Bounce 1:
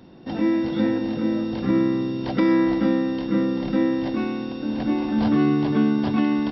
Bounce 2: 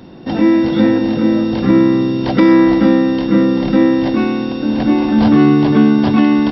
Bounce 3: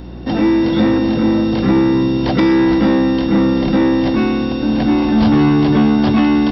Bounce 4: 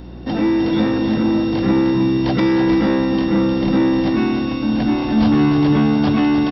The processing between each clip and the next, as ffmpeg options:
-af "acontrast=71,volume=1.5"
-filter_complex "[0:a]acrossover=split=150|2400[s0][s1][s2];[s1]asoftclip=type=tanh:threshold=0.251[s3];[s0][s3][s2]amix=inputs=3:normalize=0,aeval=exprs='val(0)+0.0224*(sin(2*PI*60*n/s)+sin(2*PI*2*60*n/s)/2+sin(2*PI*3*60*n/s)/3+sin(2*PI*4*60*n/s)/4+sin(2*PI*5*60*n/s)/5)':c=same,volume=1.26"
-af "aecho=1:1:307:0.398,volume=0.668"

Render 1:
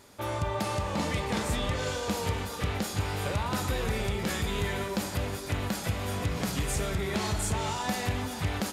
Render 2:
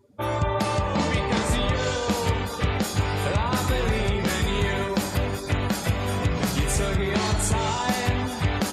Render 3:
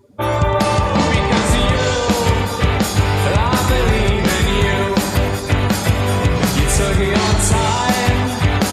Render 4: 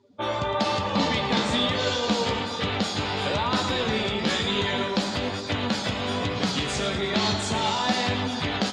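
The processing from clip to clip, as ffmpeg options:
-af "afftdn=nr=27:nf=-47,volume=2.11"
-af "aecho=1:1:111|222|333|444|555|666:0.211|0.125|0.0736|0.0434|0.0256|0.0151,volume=2.66"
-af "flanger=delay=9.3:depth=6.6:regen=53:speed=1.1:shape=triangular,aexciter=amount=1.8:drive=7:freq=3100,highpass=150,equalizer=f=160:t=q:w=4:g=-4,equalizer=f=240:t=q:w=4:g=4,equalizer=f=360:t=q:w=4:g=-3,lowpass=f=5300:w=0.5412,lowpass=f=5300:w=1.3066,volume=0.596"

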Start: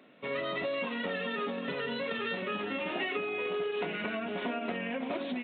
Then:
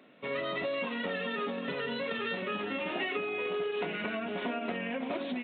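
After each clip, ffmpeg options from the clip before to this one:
-af anull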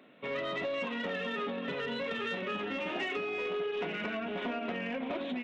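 -af "asoftclip=type=tanh:threshold=0.0501"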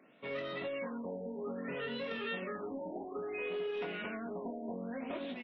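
-filter_complex "[0:a]asplit=2[s0][s1];[s1]adelay=22,volume=0.531[s2];[s0][s2]amix=inputs=2:normalize=0,afftfilt=real='re*lt(b*sr/1024,930*pow(6000/930,0.5+0.5*sin(2*PI*0.6*pts/sr)))':imag='im*lt(b*sr/1024,930*pow(6000/930,0.5+0.5*sin(2*PI*0.6*pts/sr)))':win_size=1024:overlap=0.75,volume=0.531"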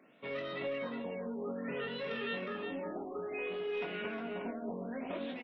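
-af "aecho=1:1:360:0.447"

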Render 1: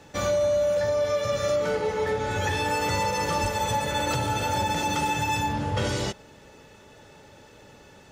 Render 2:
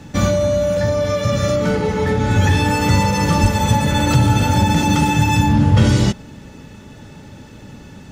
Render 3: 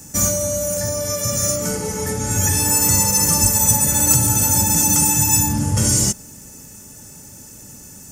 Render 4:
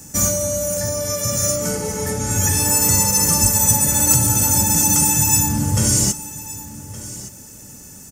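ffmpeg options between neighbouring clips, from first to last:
-af "lowshelf=f=330:t=q:w=1.5:g=9,volume=2.24"
-af "aexciter=amount=13.2:drive=8.3:freq=5800,volume=0.447"
-af "aecho=1:1:1167:0.15"

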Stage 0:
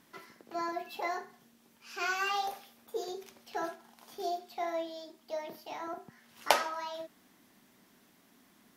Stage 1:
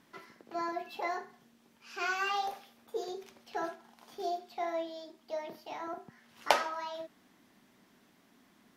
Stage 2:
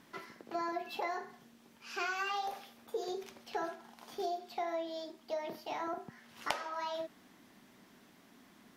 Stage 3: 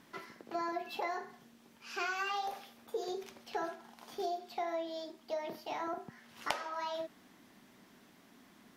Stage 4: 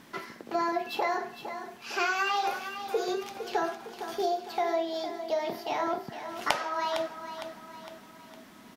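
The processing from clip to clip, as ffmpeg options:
-af "highshelf=f=7600:g=-9.5"
-af "acompressor=threshold=0.0141:ratio=5,volume=1.5"
-af anull
-af "aecho=1:1:458|916|1374|1832|2290:0.316|0.152|0.0729|0.035|0.0168,volume=2.51"

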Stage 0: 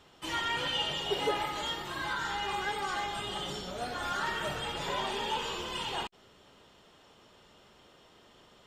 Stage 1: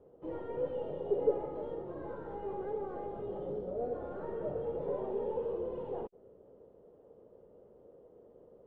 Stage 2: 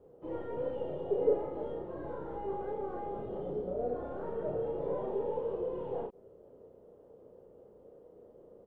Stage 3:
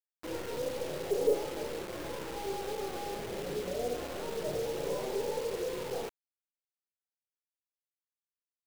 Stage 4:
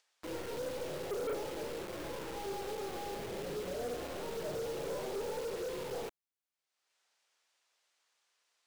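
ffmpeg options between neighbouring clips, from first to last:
-af "aeval=exprs='(tanh(28.2*val(0)+0.4)-tanh(0.4))/28.2':c=same,lowpass=f=490:t=q:w=4.9,volume=0.794"
-filter_complex "[0:a]asplit=2[s0][s1];[s1]adelay=33,volume=0.708[s2];[s0][s2]amix=inputs=2:normalize=0"
-af "acrusher=bits=6:mix=0:aa=0.000001"
-filter_complex "[0:a]acrossover=split=440|7900[s0][s1][s2];[s1]acompressor=mode=upward:threshold=0.00141:ratio=2.5[s3];[s0][s3][s2]amix=inputs=3:normalize=0,asoftclip=type=tanh:threshold=0.0251,volume=0.891"

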